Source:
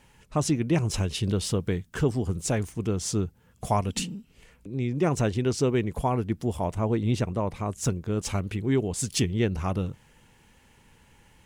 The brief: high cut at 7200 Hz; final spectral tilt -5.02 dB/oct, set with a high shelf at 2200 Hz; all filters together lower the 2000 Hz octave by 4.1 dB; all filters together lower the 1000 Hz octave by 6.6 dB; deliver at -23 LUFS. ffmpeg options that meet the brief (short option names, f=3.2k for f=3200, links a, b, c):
-af "lowpass=7.2k,equalizer=f=1k:t=o:g=-9,equalizer=f=2k:t=o:g=-8,highshelf=f=2.2k:g=8,volume=5dB"